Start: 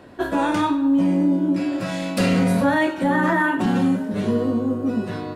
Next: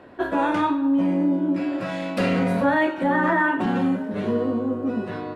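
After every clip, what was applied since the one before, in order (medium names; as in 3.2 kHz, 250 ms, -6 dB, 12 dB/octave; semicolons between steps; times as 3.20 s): tone controls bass -6 dB, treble -13 dB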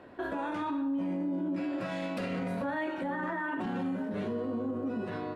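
peak limiter -21.5 dBFS, peak gain reduction 11 dB; trim -5 dB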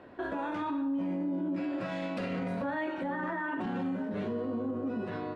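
distance through air 52 m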